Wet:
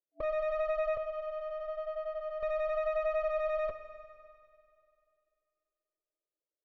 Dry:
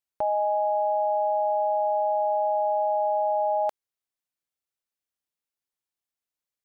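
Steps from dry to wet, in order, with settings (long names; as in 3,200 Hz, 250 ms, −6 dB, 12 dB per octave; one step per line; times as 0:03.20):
0:00.97–0:02.43: parametric band 480 Hz −15 dB 2.4 octaves
brick-wall band-pass 300–660 Hz
in parallel at +3 dB: brickwall limiter −35 dBFS, peak gain reduction 11 dB
on the sum: flanger 0.92 Hz, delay 0.3 ms, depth 9.2 ms, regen −28%
asymmetric clip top −44.5 dBFS, bottom −26.5 dBFS
high-frequency loss of the air 240 metres
four-comb reverb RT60 2.5 s, DRR 10 dB
level +2 dB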